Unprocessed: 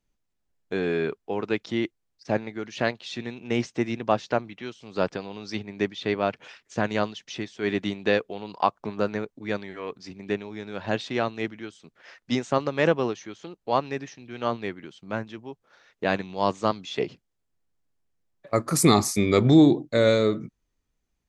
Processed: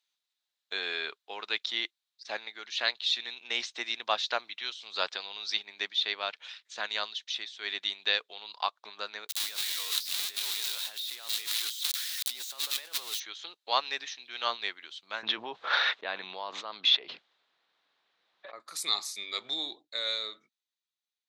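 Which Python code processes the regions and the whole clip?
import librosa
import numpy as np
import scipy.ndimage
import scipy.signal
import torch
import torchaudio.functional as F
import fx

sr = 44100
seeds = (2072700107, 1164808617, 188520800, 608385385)

y = fx.chain(x, sr, fx.crossing_spikes(level_db=-16.5),
    fx.over_compress(threshold_db=-34.0, ratio=-1.0), at=(9.29, 13.2))
y = fx.chain(y, sr, fx.spacing_loss(db_at_10k=38),
    fx.env_flatten(amount_pct=100), at=(15.23, 18.6))
y = scipy.signal.sosfilt(scipy.signal.butter(2, 1100.0, 'highpass', fs=sr, output='sos'), y)
y = fx.peak_eq(y, sr, hz=3800.0, db=14.5, octaves=0.58)
y = fx.rider(y, sr, range_db=10, speed_s=2.0)
y = F.gain(torch.from_numpy(y), -7.0).numpy()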